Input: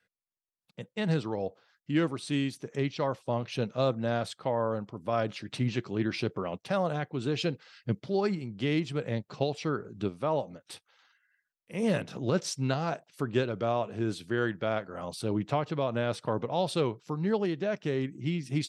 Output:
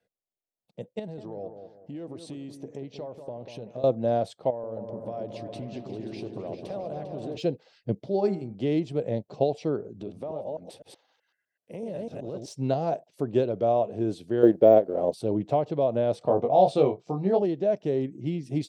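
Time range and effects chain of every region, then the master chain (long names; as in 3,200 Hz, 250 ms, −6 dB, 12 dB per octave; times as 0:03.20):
0:00.99–0:03.84: downward compressor 10 to 1, threshold −37 dBFS + bucket-brigade delay 190 ms, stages 2,048, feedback 36%, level −8 dB
0:04.50–0:07.37: downward compressor, threshold −36 dBFS + echo whose low-pass opens from repeat to repeat 133 ms, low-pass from 400 Hz, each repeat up 2 octaves, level −3 dB
0:08.07–0:08.55: notch filter 3,000 Hz, Q 29 + hum removal 77.98 Hz, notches 30
0:09.94–0:12.48: delay that plays each chunk backwards 126 ms, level −1 dB + high-pass filter 53 Hz + downward compressor 5 to 1, threshold −36 dBFS
0:14.43–0:15.14: mu-law and A-law mismatch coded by A + parametric band 390 Hz +13.5 dB 2 octaves
0:16.19–0:17.42: low-pass filter 8,600 Hz 24 dB per octave + double-tracking delay 21 ms −4 dB + hollow resonant body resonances 720/1,200/2,300 Hz, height 8 dB, ringing for 25 ms
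whole clip: drawn EQ curve 170 Hz 0 dB, 670 Hz +8 dB, 1,300 Hz −12 dB, 3,500 Hz −6 dB; de-essing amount 100%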